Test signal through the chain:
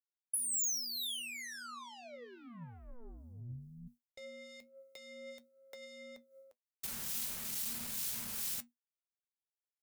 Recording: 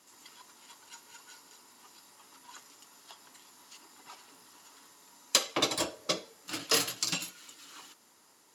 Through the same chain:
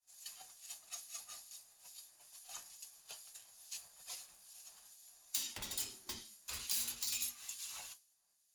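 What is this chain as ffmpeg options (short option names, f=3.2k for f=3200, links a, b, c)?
-filter_complex "[0:a]aeval=exprs='(tanh(56.2*val(0)+0.15)-tanh(0.15))/56.2':c=same,lowshelf=f=420:g=-6,acrossover=split=250[a][b];[b]acompressor=threshold=-45dB:ratio=6[c];[a][c]amix=inputs=2:normalize=0,flanger=delay=7:depth=3.4:regen=66:speed=0.36:shape=triangular,afreqshift=-240,agate=range=-33dB:threshold=-54dB:ratio=3:detection=peak,crystalizer=i=6:c=0,acrossover=split=2200[d][e];[d]aeval=exprs='val(0)*(1-0.5/2+0.5/2*cos(2*PI*2.3*n/s))':c=same[f];[e]aeval=exprs='val(0)*(1-0.5/2-0.5/2*cos(2*PI*2.3*n/s))':c=same[g];[f][g]amix=inputs=2:normalize=0"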